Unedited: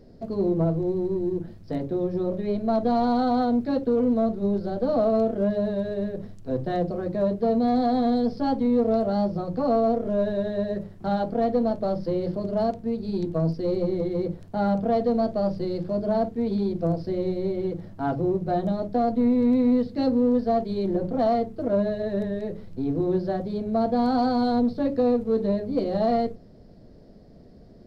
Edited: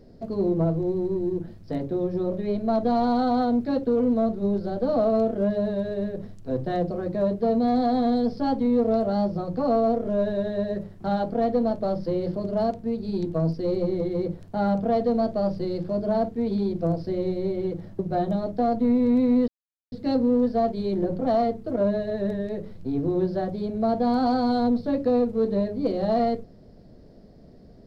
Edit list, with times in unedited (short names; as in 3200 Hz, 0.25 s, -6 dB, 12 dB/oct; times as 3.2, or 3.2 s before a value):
17.99–18.35 cut
19.84 insert silence 0.44 s